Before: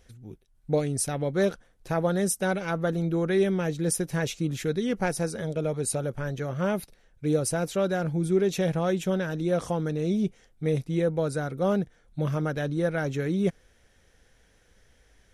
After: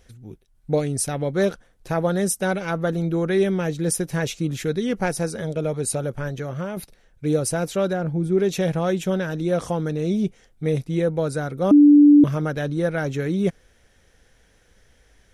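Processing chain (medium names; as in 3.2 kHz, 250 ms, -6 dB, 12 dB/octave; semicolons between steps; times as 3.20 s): 6.27–6.77 s: compression 10:1, threshold -28 dBFS, peak gain reduction 8 dB; 7.93–8.38 s: treble shelf 2.1 kHz -11 dB; 11.71–12.24 s: bleep 292 Hz -11 dBFS; trim +3.5 dB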